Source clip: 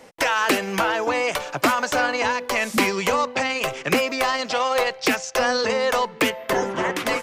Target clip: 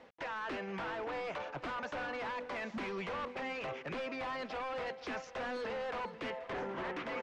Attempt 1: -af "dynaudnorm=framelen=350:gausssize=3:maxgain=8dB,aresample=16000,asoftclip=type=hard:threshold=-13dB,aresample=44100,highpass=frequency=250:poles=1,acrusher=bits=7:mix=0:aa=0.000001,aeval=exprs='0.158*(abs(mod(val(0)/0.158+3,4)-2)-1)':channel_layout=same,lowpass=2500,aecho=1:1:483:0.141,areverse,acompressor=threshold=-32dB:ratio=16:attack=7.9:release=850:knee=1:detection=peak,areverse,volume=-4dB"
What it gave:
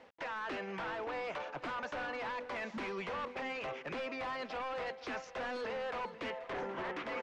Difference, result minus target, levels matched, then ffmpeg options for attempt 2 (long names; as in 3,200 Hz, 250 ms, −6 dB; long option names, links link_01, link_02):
125 Hz band −2.5 dB
-af "dynaudnorm=framelen=350:gausssize=3:maxgain=8dB,aresample=16000,asoftclip=type=hard:threshold=-13dB,aresample=44100,highpass=frequency=89:poles=1,acrusher=bits=7:mix=0:aa=0.000001,aeval=exprs='0.158*(abs(mod(val(0)/0.158+3,4)-2)-1)':channel_layout=same,lowpass=2500,aecho=1:1:483:0.141,areverse,acompressor=threshold=-32dB:ratio=16:attack=7.9:release=850:knee=1:detection=peak,areverse,volume=-4dB"